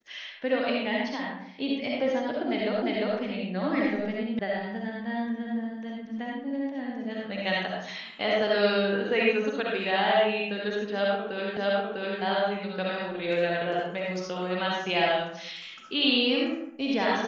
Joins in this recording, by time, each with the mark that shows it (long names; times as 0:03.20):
0:02.82: the same again, the last 0.35 s
0:04.39: cut off before it has died away
0:11.57: the same again, the last 0.65 s